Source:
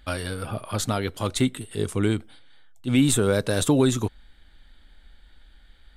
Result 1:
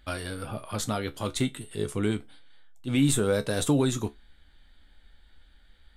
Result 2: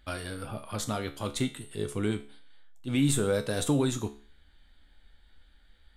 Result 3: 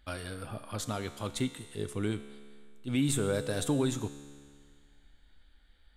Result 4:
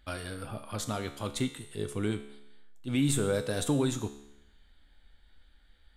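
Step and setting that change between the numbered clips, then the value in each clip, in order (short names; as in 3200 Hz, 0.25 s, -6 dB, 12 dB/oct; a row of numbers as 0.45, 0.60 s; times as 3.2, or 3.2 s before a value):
resonator, decay: 0.17, 0.4, 2, 0.86 s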